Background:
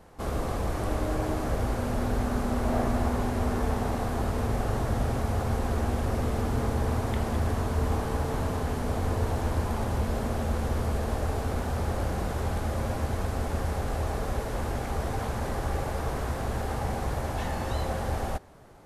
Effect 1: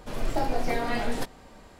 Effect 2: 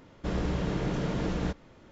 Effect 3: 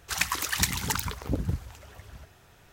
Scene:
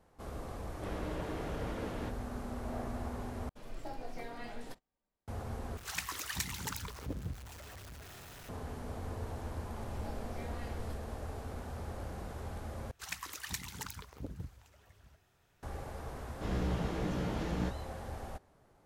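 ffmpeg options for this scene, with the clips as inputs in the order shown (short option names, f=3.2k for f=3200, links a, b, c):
-filter_complex "[2:a]asplit=2[a][b];[1:a]asplit=2[c][d];[3:a]asplit=2[e][f];[0:a]volume=-13dB[g];[a]bass=f=250:g=-10,treble=f=4k:g=-7[h];[c]agate=range=-24dB:threshold=-42dB:ratio=16:release=100:detection=peak[i];[e]aeval=exprs='val(0)+0.5*0.0224*sgn(val(0))':c=same[j];[d]flanger=delay=22.5:depth=5:speed=2.2[k];[b]flanger=delay=16:depth=2.8:speed=2[l];[g]asplit=4[m][n][o][p];[m]atrim=end=3.494[q];[i]atrim=end=1.79,asetpts=PTS-STARTPTS,volume=-16.5dB[r];[n]atrim=start=5.276:end=5.774[s];[j]atrim=end=2.72,asetpts=PTS-STARTPTS,volume=-12.5dB[t];[o]atrim=start=8.486:end=12.914[u];[f]atrim=end=2.72,asetpts=PTS-STARTPTS,volume=-14.5dB[v];[p]atrim=start=15.626[w];[h]atrim=end=1.91,asetpts=PTS-STARTPTS,volume=-7dB,afade=t=in:d=0.004:c=hsin,afade=t=out:st=1.906:d=0.004:c=hsin,adelay=580[x];[k]atrim=end=1.79,asetpts=PTS-STARTPTS,volume=-16.5dB,afade=t=in:d=0.004:c=hsin,afade=t=out:st=1.786:d=0.004:c=hsin,adelay=9680[y];[l]atrim=end=1.91,asetpts=PTS-STARTPTS,volume=-2.5dB,afade=t=in:d=0.004:c=hsin,afade=t=out:st=1.906:d=0.004:c=hsin,adelay=16170[z];[q][r]acrossfade=d=0.004:c1=hsin:c2=hsin[aa];[aa][s]acrossfade=d=0.004:c1=hsin:c2=hsin[ab];[ab][t]acrossfade=d=0.004:c1=hsin:c2=hsin[ac];[ac][u]acrossfade=d=0.004:c1=hsin:c2=hsin[ad];[ad][v]acrossfade=d=0.004:c1=hsin:c2=hsin[ae];[ae][w]acrossfade=d=0.004:c1=hsin:c2=hsin[af];[af][x][y][z]amix=inputs=4:normalize=0"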